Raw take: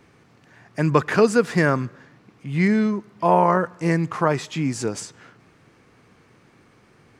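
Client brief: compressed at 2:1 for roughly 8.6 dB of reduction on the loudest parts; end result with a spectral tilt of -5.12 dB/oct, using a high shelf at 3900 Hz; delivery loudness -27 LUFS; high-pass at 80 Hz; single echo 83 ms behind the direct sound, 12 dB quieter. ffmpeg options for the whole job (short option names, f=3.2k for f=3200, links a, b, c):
-af "highpass=80,highshelf=f=3.9k:g=6.5,acompressor=threshold=-27dB:ratio=2,aecho=1:1:83:0.251,volume=0.5dB"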